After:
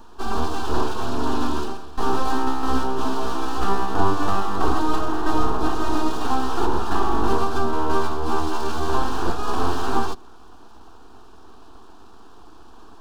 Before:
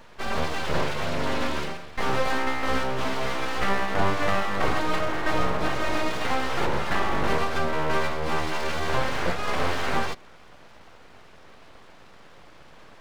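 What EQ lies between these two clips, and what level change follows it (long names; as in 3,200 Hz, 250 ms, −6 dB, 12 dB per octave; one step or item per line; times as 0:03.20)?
tilt shelving filter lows +3 dB, about 840 Hz
phaser with its sweep stopped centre 560 Hz, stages 6
+5.5 dB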